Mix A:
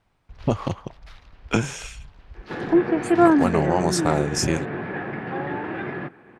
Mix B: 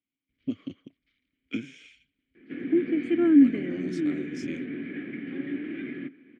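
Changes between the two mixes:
first sound -10.5 dB; second sound +6.5 dB; master: add vowel filter i

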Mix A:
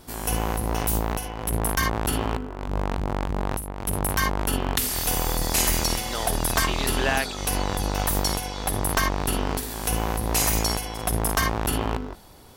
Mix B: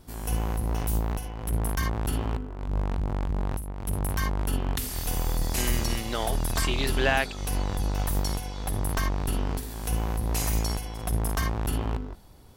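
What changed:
background -8.5 dB; master: add low shelf 210 Hz +10 dB

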